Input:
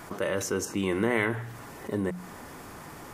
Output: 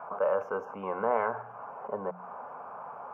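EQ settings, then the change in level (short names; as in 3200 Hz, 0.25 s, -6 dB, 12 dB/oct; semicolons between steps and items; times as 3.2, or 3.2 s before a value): HPF 460 Hz 12 dB/oct; inverse Chebyshev low-pass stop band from 3600 Hz, stop band 40 dB; fixed phaser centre 790 Hz, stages 4; +7.5 dB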